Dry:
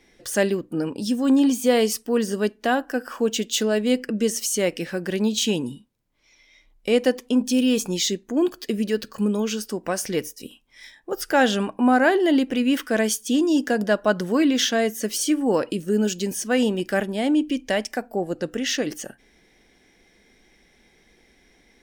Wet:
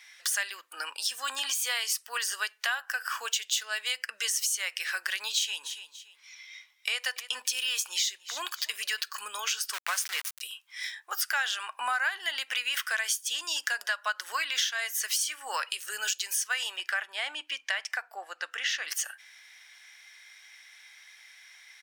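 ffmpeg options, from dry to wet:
ffmpeg -i in.wav -filter_complex "[0:a]asplit=3[link_01][link_02][link_03];[link_01]afade=type=out:start_time=5.63:duration=0.02[link_04];[link_02]aecho=1:1:287|574:0.0891|0.0258,afade=type=in:start_time=5.63:duration=0.02,afade=type=out:start_time=9.02:duration=0.02[link_05];[link_03]afade=type=in:start_time=9.02:duration=0.02[link_06];[link_04][link_05][link_06]amix=inputs=3:normalize=0,asettb=1/sr,asplit=3[link_07][link_08][link_09];[link_07]atrim=end=9.734[link_10];[link_08]atrim=start=9.73:end=10.41,asetpts=PTS-STARTPTS,afade=type=in:duration=0.004:curve=qsin,afade=type=out:start_time=0.676:duration=0.004:curve=qsin,aeval=exprs='val(0)*gte(abs(val(0)),0.0316)':channel_layout=same[link_11];[link_09]atrim=start=10.406[link_12];[link_10][link_11]acrossfade=duration=0.004:curve1=hsin:curve2=qsin[link_13];[link_13][link_12]acrossfade=duration=0.004:curve1=qsin:curve2=hsin,asettb=1/sr,asplit=3[link_14][link_15][link_16];[link_14]atrim=end=16.764[link_17];[link_15]atrim=start=16.76:end=18.88,asetpts=PTS-STARTPTS,afade=type=in:duration=0.004:curve=qsin,afade=type=out:start_time=2.116:duration=0.004:curve=qsin,lowpass=frequency=2100:poles=1[link_18];[link_16]atrim=start=18.876[link_19];[link_17][link_18]acrossfade=duration=0.004:curve1=hsin:curve2=qsin[link_20];[link_20][link_19]acrossfade=duration=0.004:curve1=qsin:curve2=hsin,highpass=frequency=1200:width=0.5412,highpass=frequency=1200:width=1.3066,acompressor=threshold=-36dB:ratio=5,volume=8.5dB" out.wav

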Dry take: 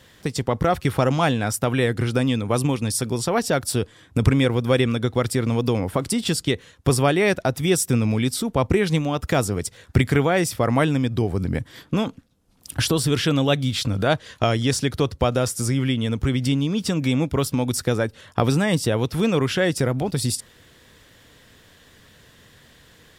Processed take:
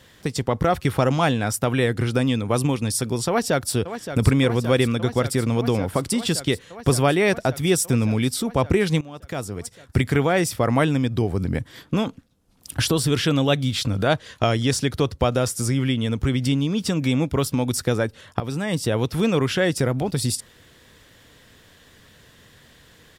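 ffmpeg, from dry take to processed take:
ffmpeg -i in.wav -filter_complex "[0:a]asplit=2[link_01][link_02];[link_02]afade=type=in:start_time=3.28:duration=0.01,afade=type=out:start_time=3.73:duration=0.01,aecho=0:1:570|1140|1710|2280|2850|3420|3990|4560|5130|5700|6270|6840:0.298538|0.253758|0.215694|0.18334|0.155839|0.132463|0.112594|0.0957045|0.0813488|0.0691465|0.0587745|0.0499584[link_03];[link_01][link_03]amix=inputs=2:normalize=0,asplit=3[link_04][link_05][link_06];[link_04]atrim=end=9.01,asetpts=PTS-STARTPTS,afade=type=out:start_time=9.006:duration=0.004:curve=hsin:silence=0.125893[link_07];[link_05]atrim=start=9.01:end=18.4,asetpts=PTS-STARTPTS,afade=type=in:duration=1.33:silence=0.125893,afade=type=out:start_time=9.386:duration=0.004:curve=hsin:silence=0.223872[link_08];[link_06]atrim=start=18.4,asetpts=PTS-STARTPTS,afade=type=in:duration=0.58:silence=0.223872[link_09];[link_07][link_08][link_09]concat=n=3:v=0:a=1" out.wav

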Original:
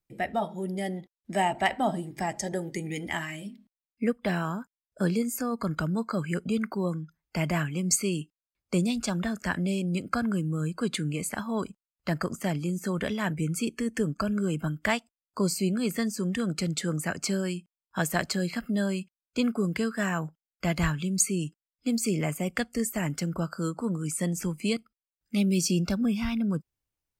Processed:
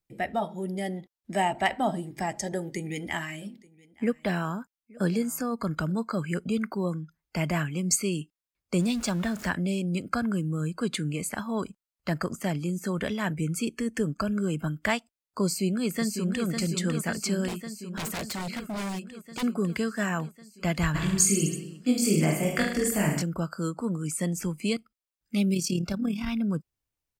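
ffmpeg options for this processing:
ffmpeg -i in.wav -filter_complex "[0:a]asettb=1/sr,asplit=3[link_01][link_02][link_03];[link_01]atrim=end=2.504[link_04];[link_02]atrim=start=2.5:end=5.92,asetpts=PTS-STARTPTS,afade=type=in:duration=0.004:curve=qsin,afade=type=out:start_time=3.416:duration=0.004:curve=qsin,aecho=1:1:873:0.0631,atrim=end_sample=150822[link_05];[link_03]atrim=start=5.916[link_06];[link_04][link_05]acrossfade=duration=0.004:curve1=hsin:curve2=qsin[link_07];[link_07][link_06]acrossfade=duration=0.004:curve1=qsin:curve2=hsin,asettb=1/sr,asplit=3[link_08][link_09][link_10];[link_08]atrim=end=8.794[link_11];[link_09]atrim=start=8.79:end=9.5,asetpts=PTS-STARTPTS,afade=type=in:duration=0.004:curve=qsin,afade=type=out:start_time=0.706:duration=0.004:curve=qsin,aeval=exprs='val(0)+0.5*0.0119*sgn(val(0))':channel_layout=same[link_12];[link_10]atrim=start=9.496[link_13];[link_11][link_12]acrossfade=duration=0.004:curve1=hsin:curve2=qsin[link_14];[link_14][link_13]acrossfade=duration=0.004:curve1=qsin:curve2=hsin,asplit=2[link_15][link_16];[link_16]afade=type=in:start_time=15.46:duration=0.01,afade=type=out:start_time=16.46:duration=0.01,aecho=0:1:550|1100|1650|2200|2750|3300|3850|4400|4950|5500|6050|6600:0.501187|0.37589|0.281918|0.211438|0.158579|0.118934|0.0892006|0.0669004|0.0501753|0.0376315|0.0282236|0.0211677[link_17];[link_15][link_17]amix=inputs=2:normalize=0,asettb=1/sr,asplit=3[link_18][link_19][link_20];[link_18]atrim=end=17.484[link_21];[link_19]atrim=start=17.48:end=19.43,asetpts=PTS-STARTPTS,afade=type=in:duration=0.004:curve=qsin,afade=type=out:start_time=1.946:duration=0.004:curve=qsin,aeval=exprs='0.0422*(abs(mod(val(0)/0.0422+3,4)-2)-1)':channel_layout=same[link_22];[link_20]atrim=start=19.426[link_23];[link_21][link_22]acrossfade=duration=0.004:curve1=hsin:curve2=qsin[link_24];[link_24][link_23]acrossfade=duration=0.004:curve1=qsin:curve2=hsin,asplit=3[link_25][link_26][link_27];[link_25]afade=type=out:start_time=20.94:duration=0.02[link_28];[link_26]aecho=1:1:20|44|72.8|107.4|148.8|198.6|258.3|330:0.794|0.631|0.501|0.398|0.316|0.251|0.2|0.158,afade=type=in:start_time=20.94:duration=0.02,afade=type=out:start_time=23.21:duration=0.02[link_29];[link_27]afade=type=in:start_time=23.21:duration=0.02[link_30];[link_28][link_29][link_30]amix=inputs=3:normalize=0,asettb=1/sr,asplit=3[link_31][link_32][link_33];[link_31]atrim=end=25.544[link_34];[link_32]atrim=start=25.54:end=26.28,asetpts=PTS-STARTPTS,afade=type=in:duration=0.004:curve=qsin,afade=type=out:start_time=0.736:duration=0.004:curve=qsin,tremolo=f=37:d=0.571[link_35];[link_33]atrim=start=26.276[link_36];[link_34][link_35]acrossfade=duration=0.004:curve1=hsin:curve2=qsin[link_37];[link_37][link_36]acrossfade=duration=0.004:curve1=qsin:curve2=hsin" out.wav

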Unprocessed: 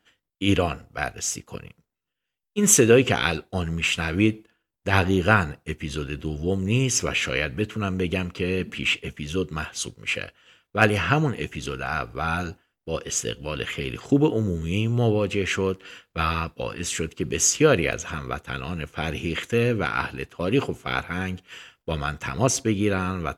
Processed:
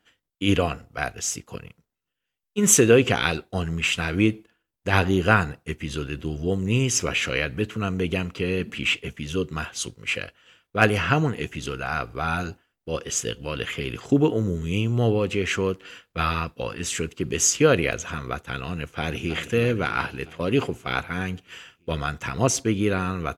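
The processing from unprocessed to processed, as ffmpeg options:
ffmpeg -i in.wav -filter_complex "[0:a]asplit=2[link_01][link_02];[link_02]afade=type=in:start_time=18.77:duration=0.01,afade=type=out:start_time=19.39:duration=0.01,aecho=0:1:320|640|960|1280|1600|1920|2240|2560:0.266073|0.172947|0.112416|0.0730702|0.0474956|0.0308721|0.0200669|0.0130435[link_03];[link_01][link_03]amix=inputs=2:normalize=0" out.wav

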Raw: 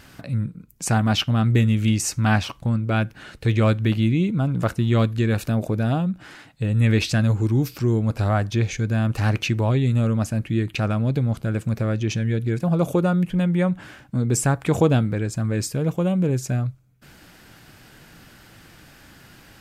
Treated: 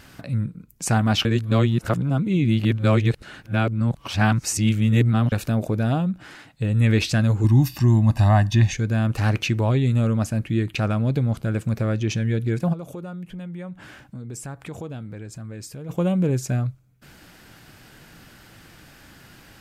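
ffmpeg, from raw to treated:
ffmpeg -i in.wav -filter_complex "[0:a]asettb=1/sr,asplit=3[link_01][link_02][link_03];[link_01]atrim=end=7.444[link_04];[link_02]atrim=start=7.44:end=8.74,asetpts=PTS-STARTPTS,afade=type=in:duration=0.004:curve=qsin,afade=type=out:start_time=1.296:duration=0.004:curve=qsin,aecho=1:1:1.1:1,atrim=end_sample=57330[link_05];[link_03]atrim=start=8.736[link_06];[link_04][link_05]acrossfade=duration=0.004:curve1=hsin:curve2=qsin[link_07];[link_07][link_06]acrossfade=duration=0.004:curve1=qsin:curve2=hsin,asplit=3[link_08][link_09][link_10];[link_08]afade=type=out:start_time=12.72:duration=0.02[link_11];[link_09]acompressor=threshold=-39dB:ratio=2.5:attack=3.2:release=140:knee=1:detection=peak,afade=type=in:start_time=12.72:duration=0.02,afade=type=out:start_time=15.89:duration=0.02[link_12];[link_10]afade=type=in:start_time=15.89:duration=0.02[link_13];[link_11][link_12][link_13]amix=inputs=3:normalize=0,asplit=3[link_14][link_15][link_16];[link_14]atrim=end=1.252[link_17];[link_15]atrim=start=1.248:end=5.322,asetpts=PTS-STARTPTS,areverse[link_18];[link_16]atrim=start=5.318[link_19];[link_17][link_18]acrossfade=duration=0.004:curve1=hsin:curve2=hsin[link_20];[link_20][link_19]acrossfade=duration=0.004:curve1=hsin:curve2=hsin" out.wav

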